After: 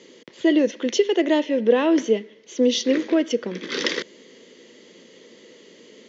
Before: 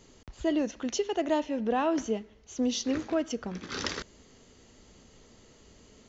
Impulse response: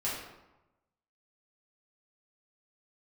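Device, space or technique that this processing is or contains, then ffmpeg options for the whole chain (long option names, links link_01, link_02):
television speaker: -af "highpass=frequency=190:width=0.5412,highpass=frequency=190:width=1.3066,equalizer=frequency=350:width_type=q:width=4:gain=6,equalizer=frequency=500:width_type=q:width=4:gain=9,equalizer=frequency=760:width_type=q:width=4:gain=-10,equalizer=frequency=1300:width_type=q:width=4:gain=-6,equalizer=frequency=2000:width_type=q:width=4:gain=8,equalizer=frequency=3300:width_type=q:width=4:gain=7,lowpass=frequency=6500:width=0.5412,lowpass=frequency=6500:width=1.3066,volume=6.5dB"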